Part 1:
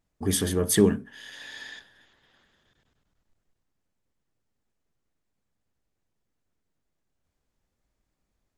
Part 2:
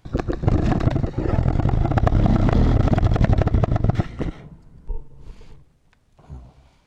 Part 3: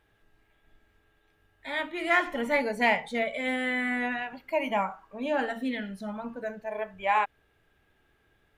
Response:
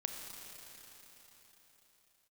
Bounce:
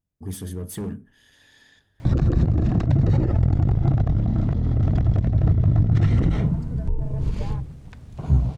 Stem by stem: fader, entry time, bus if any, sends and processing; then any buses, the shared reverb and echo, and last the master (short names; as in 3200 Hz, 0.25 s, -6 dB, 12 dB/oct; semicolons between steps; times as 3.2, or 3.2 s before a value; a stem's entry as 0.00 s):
-14.5 dB, 0.00 s, no bus, no send, high shelf 9100 Hz +11 dB; hard clip -19.5 dBFS, distortion -8 dB
+1.5 dB, 2.00 s, bus A, no send, notches 50/100/150 Hz
-19.5 dB, 0.35 s, bus A, no send, LPF 1200 Hz; compressor, threshold -31 dBFS, peak gain reduction 10 dB
bus A: 0.0 dB, negative-ratio compressor -27 dBFS, ratio -1; limiter -21 dBFS, peak gain reduction 9.5 dB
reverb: off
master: bell 100 Hz +14 dB 3 oct